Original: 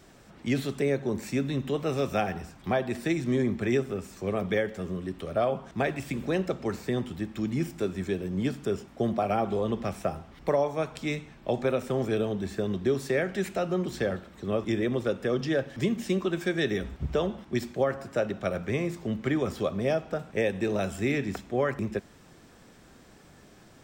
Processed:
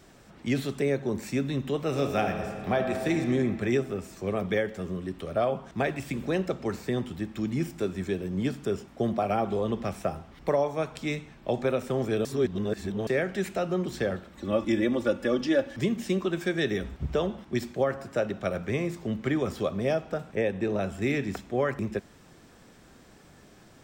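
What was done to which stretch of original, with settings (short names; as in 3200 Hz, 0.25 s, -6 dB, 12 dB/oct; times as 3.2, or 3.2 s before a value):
1.84–3.13 reverb throw, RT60 2.5 s, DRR 4.5 dB
12.25–13.07 reverse
14.37–15.76 comb 3.5 ms, depth 75%
20.35–21.02 high shelf 3400 Hz -9.5 dB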